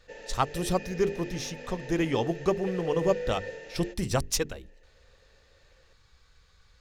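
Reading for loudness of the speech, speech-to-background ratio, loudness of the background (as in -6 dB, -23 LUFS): -30.0 LUFS, 9.5 dB, -39.5 LUFS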